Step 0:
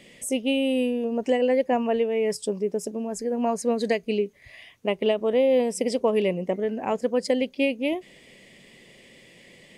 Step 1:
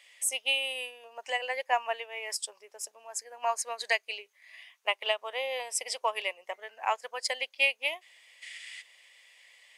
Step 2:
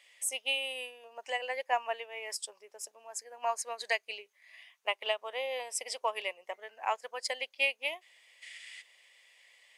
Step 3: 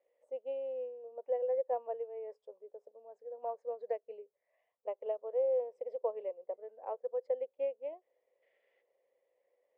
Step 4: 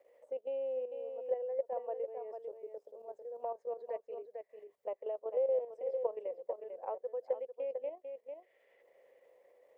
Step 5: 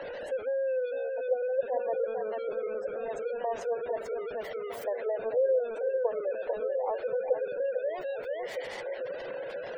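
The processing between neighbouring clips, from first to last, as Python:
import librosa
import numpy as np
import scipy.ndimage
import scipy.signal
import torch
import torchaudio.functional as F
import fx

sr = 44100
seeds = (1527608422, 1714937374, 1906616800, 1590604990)

y1 = fx.spec_box(x, sr, start_s=8.42, length_s=0.4, low_hz=1300.0, high_hz=11000.0, gain_db=11)
y1 = scipy.signal.sosfilt(scipy.signal.butter(4, 870.0, 'highpass', fs=sr, output='sos'), y1)
y1 = fx.upward_expand(y1, sr, threshold_db=-48.0, expansion=1.5)
y1 = F.gain(torch.from_numpy(y1), 6.0).numpy()
y2 = fx.low_shelf(y1, sr, hz=420.0, db=6.5)
y2 = F.gain(torch.from_numpy(y2), -4.0).numpy()
y3 = fx.lowpass_res(y2, sr, hz=500.0, q=4.9)
y3 = F.gain(torch.from_numpy(y3), -5.5).numpy()
y4 = fx.level_steps(y3, sr, step_db=10)
y4 = y4 + 10.0 ** (-9.0 / 20.0) * np.pad(y4, (int(447 * sr / 1000.0), 0))[:len(y4)]
y4 = fx.band_squash(y4, sr, depth_pct=40)
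y4 = F.gain(torch.from_numpy(y4), 3.5).numpy()
y5 = y4 + 0.5 * 10.0 ** (-37.0 / 20.0) * np.sign(y4)
y5 = fx.echo_stepped(y5, sr, ms=630, hz=170.0, octaves=1.4, feedback_pct=70, wet_db=-4.5)
y5 = fx.spec_gate(y5, sr, threshold_db=-25, keep='strong')
y5 = F.gain(torch.from_numpy(y5), 4.0).numpy()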